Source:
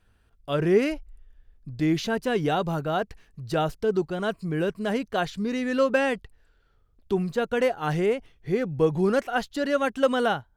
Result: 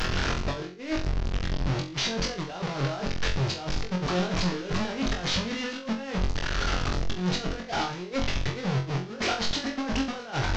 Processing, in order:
linear delta modulator 32 kbit/s, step −23.5 dBFS
compressor whose output falls as the input rises −29 dBFS, ratio −0.5
flutter between parallel walls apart 3.8 metres, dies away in 0.34 s
level −1.5 dB

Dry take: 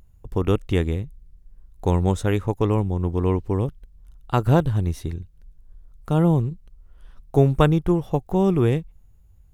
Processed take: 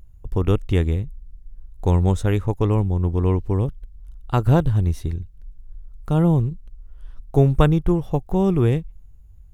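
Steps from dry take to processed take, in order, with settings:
low-shelf EQ 90 Hz +10 dB
level −1 dB

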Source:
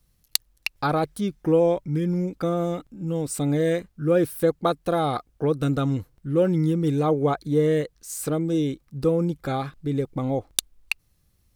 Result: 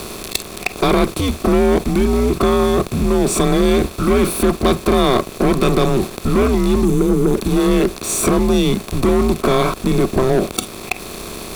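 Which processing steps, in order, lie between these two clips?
compressor on every frequency bin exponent 0.2
mains-hum notches 50/100/150/200/250/300 Hz
gain on a spectral selection 0:06.84–0:07.35, 610–6,000 Hz −9 dB
noise reduction from a noise print of the clip's start 12 dB
leveller curve on the samples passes 3
in parallel at −0.5 dB: downward compressor, threshold −17 dBFS, peak gain reduction 12.5 dB
on the sum: frequency shifter −120 Hz
level −9.5 dB

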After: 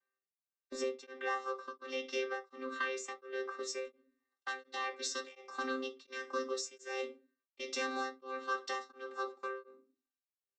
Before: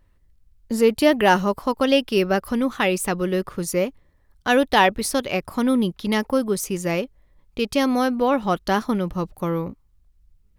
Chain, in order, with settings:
channel vocoder with a chord as carrier bare fifth, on C4
high-pass filter 980 Hz 12 dB per octave
noise gate −54 dBFS, range −11 dB
high-shelf EQ 3,900 Hz +2 dB, from 0:03.85 +10 dB
comb filter 3.3 ms, depth 56%
dynamic equaliser 6,300 Hz, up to +6 dB, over −54 dBFS, Q 1.5
downward compressor 10 to 1, threshold −35 dBFS, peak gain reduction 15.5 dB
convolution reverb RT60 0.30 s, pre-delay 5 ms, DRR 3 dB
tremolo along a rectified sine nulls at 1.4 Hz

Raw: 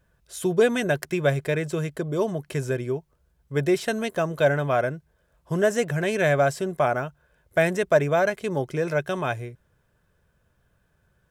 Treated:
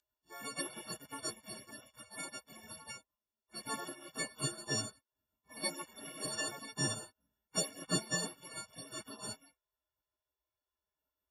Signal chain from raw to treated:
every partial snapped to a pitch grid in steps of 4 semitones
loudspeaker in its box 290–8,500 Hz, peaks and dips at 670 Hz +7 dB, 970 Hz +7 dB, 1,800 Hz −8 dB, 3,200 Hz +7 dB, 4,700 Hz +7 dB
gate on every frequency bin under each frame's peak −30 dB weak
level +9 dB

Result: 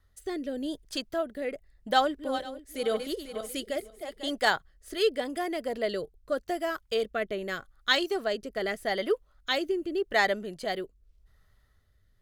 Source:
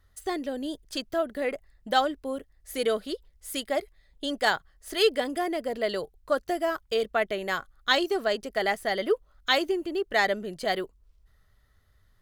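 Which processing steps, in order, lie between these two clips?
0:01.92–0:04.34: feedback delay that plays each chunk backwards 248 ms, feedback 49%, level −8 dB
rotating-speaker cabinet horn 0.85 Hz

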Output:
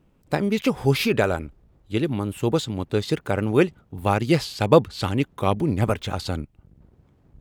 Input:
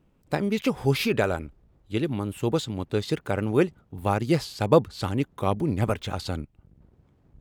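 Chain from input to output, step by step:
0:03.52–0:05.65: dynamic equaliser 2,800 Hz, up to +4 dB, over −45 dBFS, Q 1.1
level +3 dB

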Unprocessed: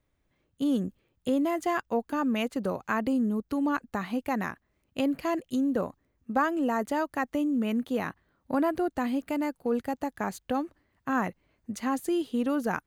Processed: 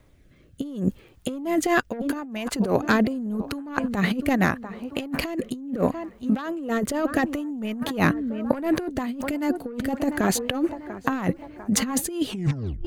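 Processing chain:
turntable brake at the end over 0.60 s
phase shifter 0.26 Hz, delay 4.4 ms, feedback 22%
on a send: tape delay 694 ms, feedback 53%, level −21 dB, low-pass 2,500 Hz
on the sum: sine wavefolder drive 5 dB, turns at −13 dBFS
rotating-speaker cabinet horn 0.75 Hz, later 5.5 Hz, at 0:08.14
compressor whose output falls as the input rises −27 dBFS, ratio −0.5
level +4 dB

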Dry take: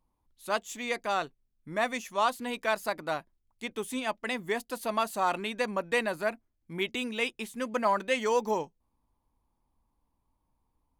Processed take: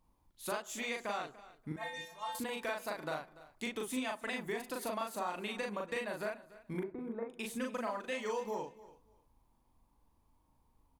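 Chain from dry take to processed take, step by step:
0:01.72–0:02.35: stiff-string resonator 160 Hz, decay 0.76 s, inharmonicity 0.008
downward compressor 10 to 1, threshold −39 dBFS, peak gain reduction 17.5 dB
0:06.79–0:07.30: inverse Chebyshev low-pass filter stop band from 2,700 Hz, stop band 40 dB
double-tracking delay 39 ms −2 dB
repeating echo 291 ms, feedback 20%, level −18.5 dB
convolution reverb RT60 0.80 s, pre-delay 27 ms, DRR 20 dB
level +2.5 dB

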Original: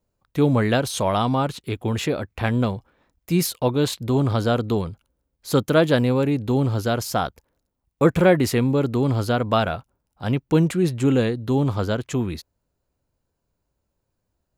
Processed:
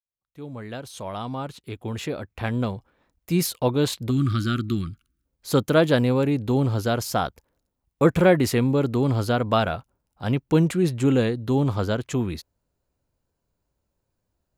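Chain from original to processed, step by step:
fade in at the beginning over 3.67 s
gain on a spectral selection 0:04.10–0:05.25, 380–1,100 Hz −24 dB
level −1 dB

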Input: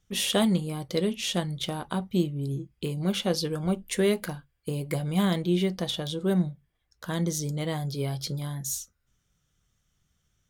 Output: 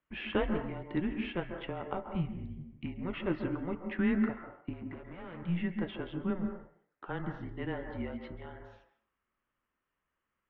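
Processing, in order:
parametric band 190 Hz −14.5 dB 0.61 octaves
0:04.73–0:05.42: tube saturation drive 39 dB, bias 0.7
on a send at −5.5 dB: convolution reverb RT60 0.60 s, pre-delay 132 ms
on the sum: single-sideband voice off tune −180 Hz 180–2,600 Hz
level −3 dB

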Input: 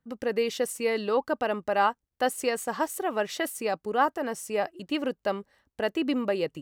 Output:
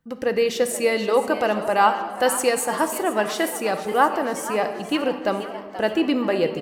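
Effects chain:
0:00.73–0:02.75: parametric band 9,800 Hz +6 dB 1.2 octaves
echo with shifted repeats 481 ms, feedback 50%, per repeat +130 Hz, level −13.5 dB
convolution reverb RT60 1.6 s, pre-delay 6 ms, DRR 7.5 dB
level +5.5 dB

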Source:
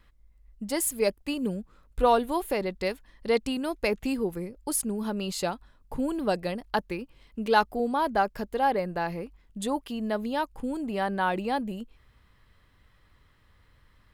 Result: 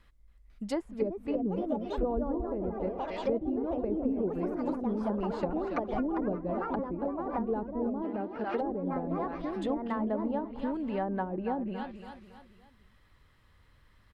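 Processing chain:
repeating echo 279 ms, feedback 42%, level −11 dB
delay with pitch and tempo change per echo 499 ms, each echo +3 semitones, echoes 3
treble cut that deepens with the level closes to 350 Hz, closed at −21.5 dBFS
0:08.02–0:08.61: meter weighting curve D
level −2 dB

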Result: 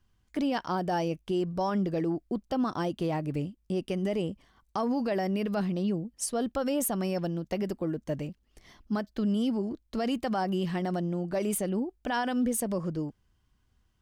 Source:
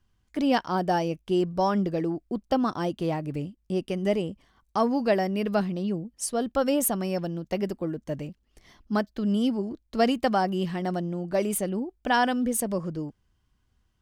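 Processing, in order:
brickwall limiter −21 dBFS, peak gain reduction 11 dB

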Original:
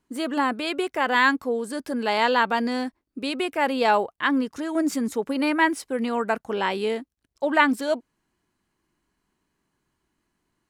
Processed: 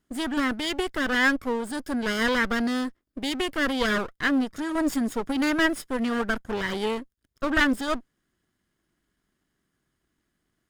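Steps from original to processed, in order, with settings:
lower of the sound and its delayed copy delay 0.59 ms

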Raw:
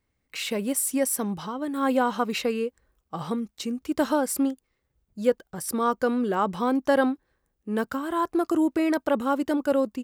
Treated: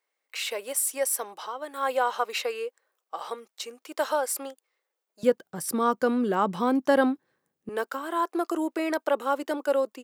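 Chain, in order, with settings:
high-pass filter 480 Hz 24 dB per octave, from 0:05.23 130 Hz, from 0:07.69 370 Hz

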